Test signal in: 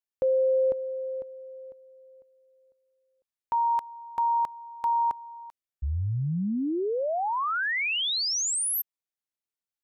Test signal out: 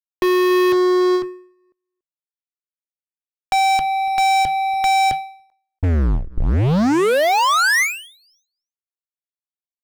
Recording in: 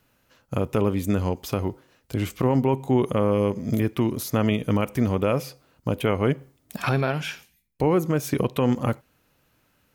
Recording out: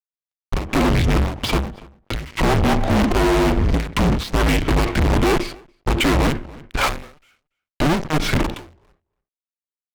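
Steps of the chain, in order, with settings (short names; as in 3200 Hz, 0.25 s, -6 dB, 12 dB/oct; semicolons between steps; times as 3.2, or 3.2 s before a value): LPF 3800 Hz 24 dB/oct; frequency shift -160 Hz; fuzz box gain 40 dB, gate -49 dBFS; outdoor echo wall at 49 m, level -21 dB; ending taper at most 110 dB/s; gain -1.5 dB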